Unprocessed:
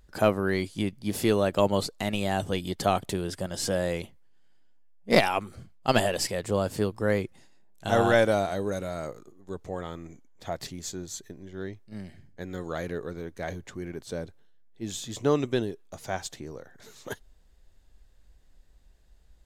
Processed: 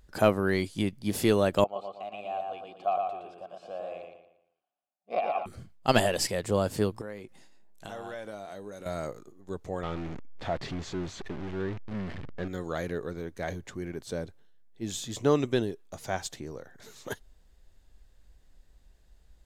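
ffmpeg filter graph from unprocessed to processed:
-filter_complex "[0:a]asettb=1/sr,asplit=3[a][b][c];[a]atrim=end=1.644[d];[b]atrim=start=1.64:end=5.46,asetpts=PTS-STARTPTS,afade=t=in:d=0.004:c=qsin,afade=t=out:st=3.816:d=0.004:c=qsin,acrossover=split=3700[e][f];[f]acompressor=threshold=-39dB:ratio=4:attack=1:release=60[g];[e][g]amix=inputs=2:normalize=0,asplit=3[h][i][j];[h]bandpass=f=730:t=q:w=8,volume=0dB[k];[i]bandpass=f=1.09k:t=q:w=8,volume=-6dB[l];[j]bandpass=f=2.44k:t=q:w=8,volume=-9dB[m];[k][l][m]amix=inputs=3:normalize=0,asplit=2[n][o];[o]adelay=116,lowpass=f=4.8k:p=1,volume=-3dB,asplit=2[p][q];[q]adelay=116,lowpass=f=4.8k:p=1,volume=0.39,asplit=2[r][s];[s]adelay=116,lowpass=f=4.8k:p=1,volume=0.39,asplit=2[t][u];[u]adelay=116,lowpass=f=4.8k:p=1,volume=0.39,asplit=2[v][w];[w]adelay=116,lowpass=f=4.8k:p=1,volume=0.39[x];[n][p][r][t][v][x]amix=inputs=6:normalize=0,atrim=end_sample=168462[y];[c]atrim=start=5.456[z];[d][y]acrossfade=d=0.004:c1=hsin:c2=qsin[aa];[aa][z]acrossfade=d=0.004:c1=qsin:c2=hsin,asettb=1/sr,asplit=3[ab][ac][ad];[ab]atrim=end=7.014[ae];[ac]atrim=start=7.01:end=8.86,asetpts=PTS-STARTPTS,afade=t=in:d=0.004:c=qsin,afade=t=out:st=1.846:d=0.004:c=qsin,equalizer=f=72:w=0.97:g=-11.5,acompressor=threshold=-40dB:ratio=4:attack=3.2:release=140:knee=1:detection=peak,asplit=2[af][ag];[ag]adelay=19,volume=-12dB[ah];[af][ah]amix=inputs=2:normalize=0,atrim=end_sample=81585[ai];[ad]atrim=start=8.856[aj];[ae][ai]acrossfade=d=0.004:c1=hsin:c2=qsin[ak];[ak][aj]acrossfade=d=0.004:c1=qsin:c2=hsin,asettb=1/sr,asplit=3[al][am][an];[al]atrim=end=9.834[ao];[am]atrim=start=9.83:end=12.48,asetpts=PTS-STARTPTS,afade=t=in:d=0.004:c=qsin,afade=t=out:st=2.646:d=0.004:c=qsin,aeval=exprs='val(0)+0.5*0.0211*sgn(val(0))':c=same,lowpass=2.9k[ap];[an]atrim=start=12.476[aq];[ao][ap]acrossfade=d=0.004:c1=hsin:c2=qsin[ar];[ar][aq]acrossfade=d=0.004:c1=qsin:c2=hsin"

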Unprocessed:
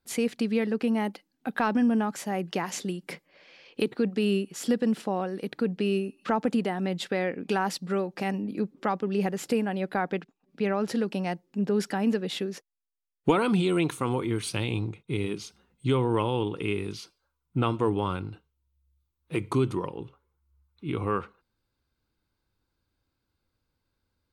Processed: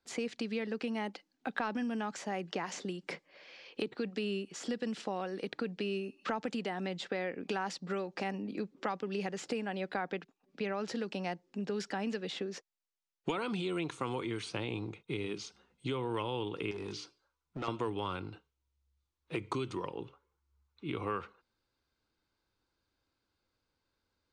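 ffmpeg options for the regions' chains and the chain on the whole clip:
-filter_complex "[0:a]asettb=1/sr,asplit=3[a][b][c];[a]atrim=end=16.714[d];[b]atrim=start=16.71:end=17.68,asetpts=PTS-STARTPTS,afade=t=in:d=0.004:c=qsin,afade=t=out:st=0.966:d=0.004:c=qsin,bandreject=f=60:t=h:w=6,bandreject=f=120:t=h:w=6,bandreject=f=180:t=h:w=6,bandreject=f=240:t=h:w=6,bandreject=f=300:t=h:w=6,bandreject=f=360:t=h:w=6,bandreject=f=420:t=h:w=6,bandreject=f=480:t=h:w=6,acompressor=threshold=-30dB:ratio=3:attack=3.2:release=140:knee=1:detection=peak,asoftclip=type=hard:threshold=-30.5dB[e];[c]atrim=start=17.676[f];[d][e]acrossfade=d=0.004:c1=hsin:c2=qsin[g];[g][f]acrossfade=d=0.004:c1=qsin:c2=hsin,acrossover=split=140|1800[h][i][j];[h]acompressor=threshold=-38dB:ratio=4[k];[i]acompressor=threshold=-33dB:ratio=4[l];[j]acompressor=threshold=-43dB:ratio=4[m];[k][l][m]amix=inputs=3:normalize=0,lowpass=f=7.3k:w=0.5412,lowpass=f=7.3k:w=1.3066,bass=f=250:g=-8,treble=f=4k:g=1"

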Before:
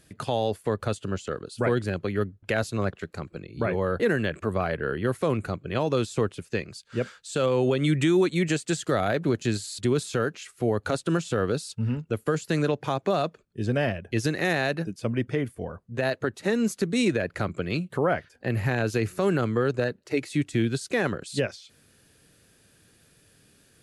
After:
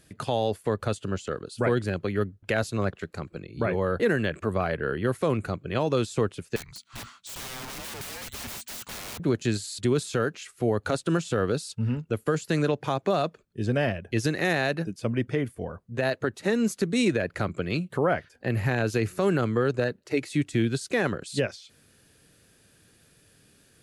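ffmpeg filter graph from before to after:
-filter_complex "[0:a]asettb=1/sr,asplit=3[a][b][c];[a]atrim=end=6.564[d];[b]atrim=start=6.56:end=9.2,asetpts=PTS-STARTPTS,afade=t=in:d=0.004:c=qsin,afade=t=out:st=2.636:d=0.004:c=qsin,equalizer=f=370:w=0.65:g=-12.5,aeval=exprs='(mod(44.7*val(0)+1,2)-1)/44.7':c=same,afreqshift=-240[e];[c]atrim=start=9.196[f];[d][e]acrossfade=d=0.004:c1=hsin:c2=qsin[g];[g][f]acrossfade=d=0.004:c1=qsin:c2=hsin"

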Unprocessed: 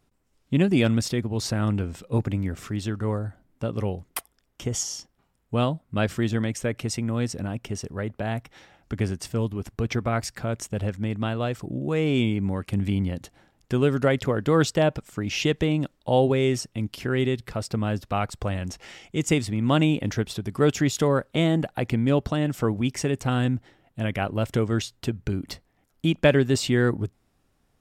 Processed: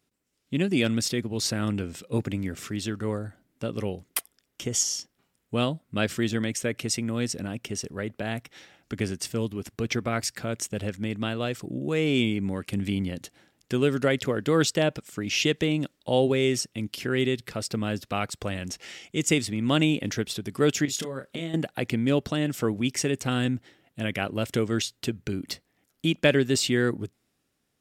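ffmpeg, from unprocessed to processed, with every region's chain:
-filter_complex "[0:a]asettb=1/sr,asplit=3[a][b][c];[a]atrim=end=20.854[d];[b]atrim=start=20.85:end=21.54,asetpts=PTS-STARTPTS,afade=t=in:d=0.004:c=qsin,afade=t=out:st=0.686:d=0.004:c=qsin,acompressor=threshold=-27dB:ratio=12:attack=3.2:release=140:knee=1:detection=peak,asplit=2[e][f];[f]adelay=30,volume=-7dB[g];[e][g]amix=inputs=2:normalize=0,atrim=end_sample=30429[h];[c]atrim=start=21.536[i];[d][h]acrossfade=d=0.004:c1=hsin:c2=qsin[j];[j][i]acrossfade=d=0.004:c1=qsin:c2=hsin,dynaudnorm=f=120:g=13:m=4.5dB,highpass=f=330:p=1,equalizer=f=890:w=0.87:g=-9"

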